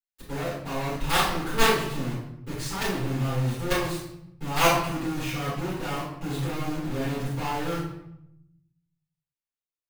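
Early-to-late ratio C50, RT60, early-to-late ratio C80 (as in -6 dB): 2.0 dB, 0.80 s, 6.0 dB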